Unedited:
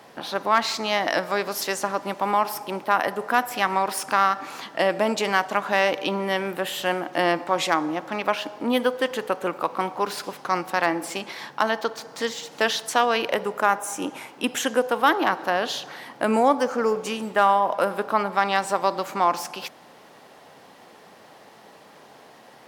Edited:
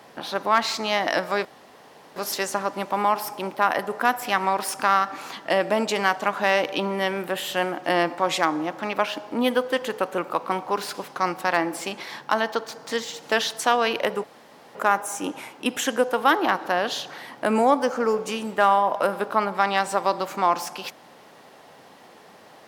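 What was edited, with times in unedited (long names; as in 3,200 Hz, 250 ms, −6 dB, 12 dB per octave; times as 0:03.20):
0:01.45: splice in room tone 0.71 s
0:13.53: splice in room tone 0.51 s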